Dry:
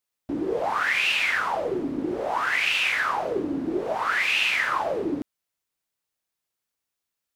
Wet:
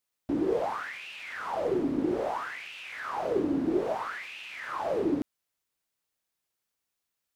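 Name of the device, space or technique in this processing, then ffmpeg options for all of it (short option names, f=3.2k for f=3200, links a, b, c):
de-esser from a sidechain: -filter_complex "[0:a]asplit=2[a][b];[b]highpass=6.2k,apad=whole_len=324559[c];[a][c]sidechaincompress=threshold=-57dB:ratio=5:attack=0.88:release=23"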